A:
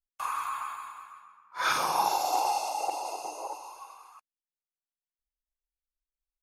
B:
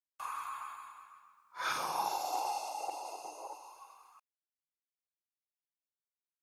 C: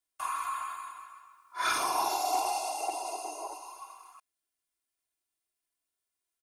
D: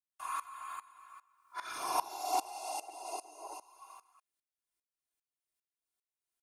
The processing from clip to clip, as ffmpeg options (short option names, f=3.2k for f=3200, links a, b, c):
-af "acrusher=bits=11:mix=0:aa=0.000001,volume=-8dB"
-af "equalizer=f=9.2k:w=4.2:g=9,aecho=1:1:2.9:0.73,asoftclip=type=tanh:threshold=-22.5dB,volume=5dB"
-af "aeval=exprs='val(0)*pow(10,-20*if(lt(mod(-2.5*n/s,1),2*abs(-2.5)/1000),1-mod(-2.5*n/s,1)/(2*abs(-2.5)/1000),(mod(-2.5*n/s,1)-2*abs(-2.5)/1000)/(1-2*abs(-2.5)/1000))/20)':c=same"